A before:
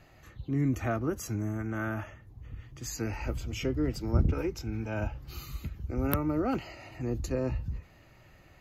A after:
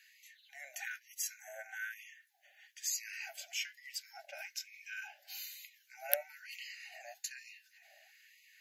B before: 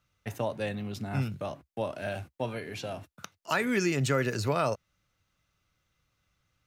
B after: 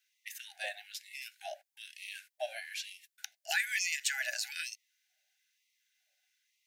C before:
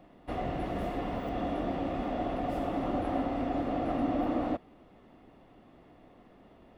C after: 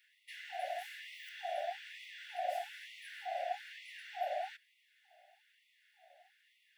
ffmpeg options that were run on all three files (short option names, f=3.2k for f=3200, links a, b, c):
-af "asuperstop=centerf=1100:order=12:qfactor=1.6,highshelf=f=4.2k:g=5,afftfilt=real='re*gte(b*sr/1024,550*pow(1900/550,0.5+0.5*sin(2*PI*1.1*pts/sr)))':imag='im*gte(b*sr/1024,550*pow(1900/550,0.5+0.5*sin(2*PI*1.1*pts/sr)))':win_size=1024:overlap=0.75"